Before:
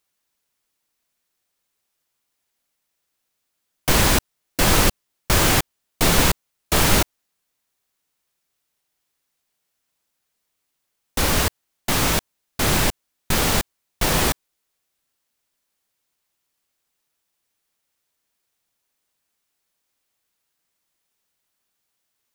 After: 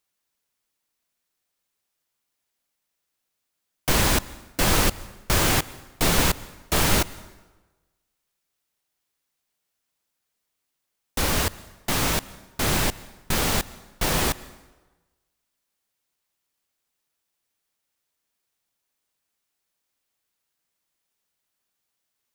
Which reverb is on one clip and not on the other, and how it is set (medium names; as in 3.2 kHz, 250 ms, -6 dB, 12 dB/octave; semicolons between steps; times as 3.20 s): plate-style reverb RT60 1.2 s, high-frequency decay 0.75×, pre-delay 110 ms, DRR 19.5 dB; trim -3.5 dB